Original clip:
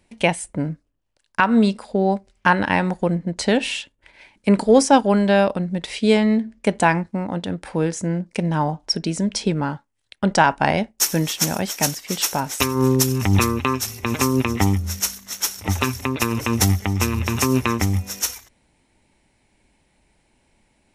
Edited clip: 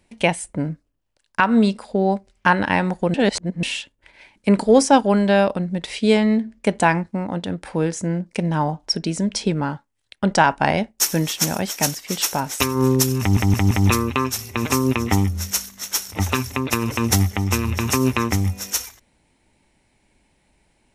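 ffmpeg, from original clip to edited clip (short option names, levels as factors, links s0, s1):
-filter_complex "[0:a]asplit=6[s0][s1][s2][s3][s4][s5];[s0]atrim=end=3.142[s6];[s1]atrim=start=3.138:end=3.632,asetpts=PTS-STARTPTS,areverse[s7];[s2]atrim=start=3.628:end=13.372[s8];[s3]atrim=start=13.198:end=13.372[s9];[s4]atrim=start=13.198:end=13.372[s10];[s5]atrim=start=13.198[s11];[s6][s7]acrossfade=d=0.004:c1=hsin:c2=hsin[s12];[s12][s8]acrossfade=d=0.004:c1=hsin:c2=hsin[s13];[s13][s9]acrossfade=d=0.004:c1=hsin:c2=hsin[s14];[s14][s10]acrossfade=d=0.004:c1=hsin:c2=hsin[s15];[s15][s11]acrossfade=d=0.004:c1=hsin:c2=hsin"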